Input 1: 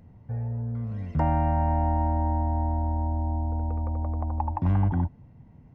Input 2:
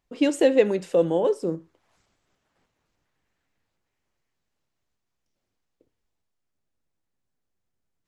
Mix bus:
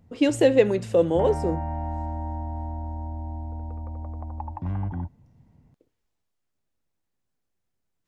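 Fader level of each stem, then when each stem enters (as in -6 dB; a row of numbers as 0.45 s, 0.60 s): -6.0 dB, +0.5 dB; 0.00 s, 0.00 s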